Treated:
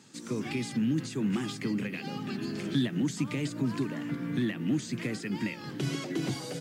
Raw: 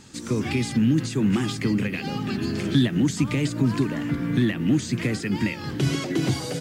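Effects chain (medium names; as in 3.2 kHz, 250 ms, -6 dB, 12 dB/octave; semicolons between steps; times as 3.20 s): high-pass 130 Hz 24 dB/octave; trim -7.5 dB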